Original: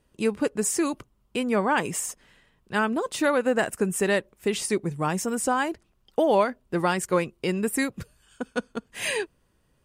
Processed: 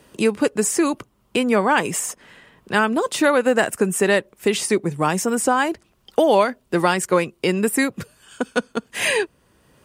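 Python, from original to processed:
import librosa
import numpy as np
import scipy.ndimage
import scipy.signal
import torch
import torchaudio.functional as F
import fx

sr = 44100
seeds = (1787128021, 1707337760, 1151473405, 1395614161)

y = fx.highpass(x, sr, hz=160.0, slope=6)
y = fx.band_squash(y, sr, depth_pct=40)
y = F.gain(torch.from_numpy(y), 6.5).numpy()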